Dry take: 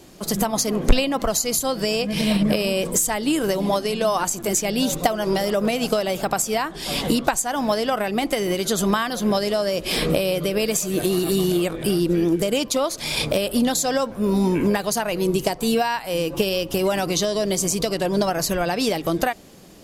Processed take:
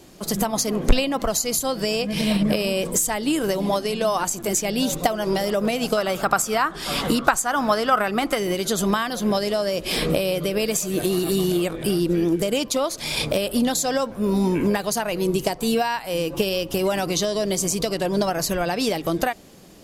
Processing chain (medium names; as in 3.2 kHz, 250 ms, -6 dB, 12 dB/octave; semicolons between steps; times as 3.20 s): 5.97–8.38 s: peaking EQ 1.3 kHz +11.5 dB 0.63 oct; trim -1 dB